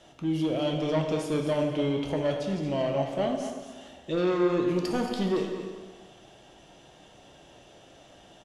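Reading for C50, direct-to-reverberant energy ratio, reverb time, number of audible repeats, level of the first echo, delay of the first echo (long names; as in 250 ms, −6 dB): 4.0 dB, 1.5 dB, 1.4 s, 1, −10.0 dB, 226 ms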